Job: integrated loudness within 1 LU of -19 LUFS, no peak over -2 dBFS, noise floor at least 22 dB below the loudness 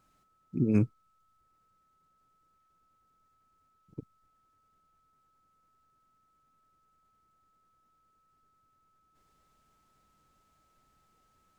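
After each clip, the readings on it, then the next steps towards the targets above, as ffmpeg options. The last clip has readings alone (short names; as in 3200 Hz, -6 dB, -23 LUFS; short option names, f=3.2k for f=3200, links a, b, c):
steady tone 1300 Hz; tone level -69 dBFS; loudness -29.5 LUFS; peak -13.0 dBFS; loudness target -19.0 LUFS
-> -af "bandreject=f=1.3k:w=30"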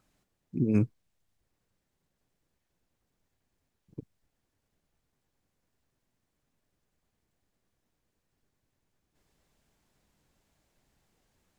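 steady tone none; loudness -29.5 LUFS; peak -13.0 dBFS; loudness target -19.0 LUFS
-> -af "volume=10.5dB"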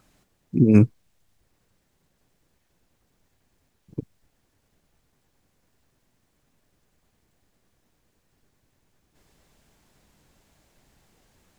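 loudness -19.0 LUFS; peak -2.5 dBFS; noise floor -71 dBFS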